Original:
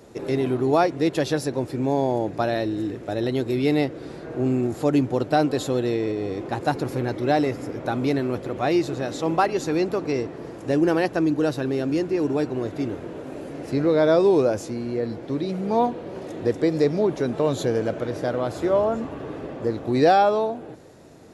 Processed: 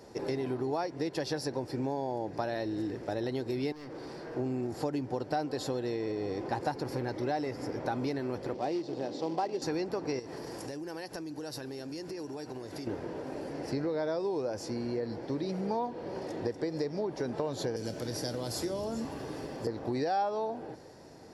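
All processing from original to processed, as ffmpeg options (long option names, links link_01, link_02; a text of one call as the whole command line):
ffmpeg -i in.wav -filter_complex "[0:a]asettb=1/sr,asplit=3[link_01][link_02][link_03];[link_01]atrim=end=3.724[link_04];[link_02]atrim=start=3.72:end=4.36,asetpts=PTS-STARTPTS,afade=type=in:duration=0.004:curve=qsin,afade=type=out:start_time=0.636:duration=0.004:curve=qsin,highpass=110,acompressor=threshold=-28dB:ratio=2.5:attack=3.2:release=140:knee=1:detection=peak,volume=35.5dB,asoftclip=hard,volume=-35.5dB[link_05];[link_03]atrim=start=4.356[link_06];[link_04][link_05]acrossfade=duration=0.004:curve1=hsin:curve2=qsin[link_07];[link_07][link_06]acrossfade=duration=0.004:curve1=qsin:curve2=hsin,asettb=1/sr,asplit=3[link_08][link_09][link_10];[link_08]atrim=end=8.544[link_11];[link_09]atrim=start=8.54:end=9.62,asetpts=PTS-STARTPTS,afade=type=in:duration=0.004:curve=qsin,afade=type=out:start_time=1.076:duration=0.004:curve=qsin,acrusher=bits=3:mode=log:mix=0:aa=0.000001,highpass=190,lowpass=3400,equalizer=frequency=1600:width=0.91:gain=-12[link_12];[link_10]atrim=start=9.616[link_13];[link_11][link_12]acrossfade=duration=0.004:curve1=hsin:curve2=qsin[link_14];[link_14][link_13]acrossfade=duration=0.004:curve1=qsin:curve2=hsin,asettb=1/sr,asplit=3[link_15][link_16][link_17];[link_15]atrim=end=10.194[link_18];[link_16]atrim=start=10.19:end=12.87,asetpts=PTS-STARTPTS,afade=type=in:duration=0.004:curve=qsin,afade=type=out:start_time=2.676:duration=0.004:curve=qsin,aemphasis=mode=production:type=75kf,acompressor=threshold=-32dB:ratio=16:attack=3.2:release=140:knee=1:detection=peak[link_19];[link_17]atrim=start=12.866[link_20];[link_18][link_19]acrossfade=duration=0.004:curve1=hsin:curve2=qsin[link_21];[link_21][link_20]acrossfade=duration=0.004:curve1=qsin:curve2=hsin,asettb=1/sr,asplit=3[link_22][link_23][link_24];[link_22]atrim=end=17.764[link_25];[link_23]atrim=start=17.76:end=19.67,asetpts=PTS-STARTPTS,afade=type=in:duration=0.004:curve=qsin,afade=type=out:start_time=1.906:duration=0.004:curve=qsin,aemphasis=mode=production:type=75fm,asplit=2[link_26][link_27];[link_27]adelay=26,volume=-13dB[link_28];[link_26][link_28]amix=inputs=2:normalize=0,atrim=end_sample=84231,acrossover=split=360|3000[link_29][link_30][link_31];[link_30]acompressor=threshold=-38dB:ratio=4:attack=3.2:release=140:knee=2.83:detection=peak[link_32];[link_29][link_32][link_31]amix=inputs=3:normalize=0[link_33];[link_24]atrim=start=19.666[link_34];[link_25][link_33]acrossfade=duration=0.004:curve1=hsin:curve2=qsin[link_35];[link_35][link_34]acrossfade=duration=0.004:curve1=qsin:curve2=hsin,equalizer=frequency=510:width=1.5:gain=2.5,acompressor=threshold=-24dB:ratio=10,superequalizer=9b=1.78:11b=1.41:14b=2.51,volume=-5.5dB" out.wav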